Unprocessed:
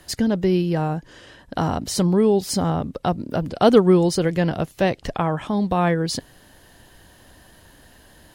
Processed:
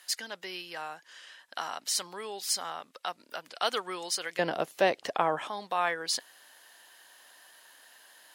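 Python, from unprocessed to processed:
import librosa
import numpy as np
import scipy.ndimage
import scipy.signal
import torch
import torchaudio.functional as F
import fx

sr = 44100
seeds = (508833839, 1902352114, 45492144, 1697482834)

y = fx.highpass(x, sr, hz=fx.steps((0.0, 1400.0), (4.39, 470.0), (5.49, 960.0)), slope=12)
y = F.gain(torch.from_numpy(y), -2.0).numpy()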